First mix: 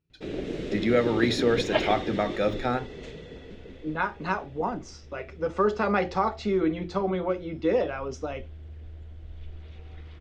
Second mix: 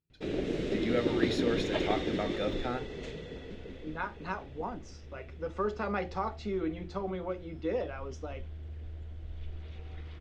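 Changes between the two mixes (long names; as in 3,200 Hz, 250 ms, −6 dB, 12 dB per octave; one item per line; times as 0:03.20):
speech −8.5 dB
second sound −10.0 dB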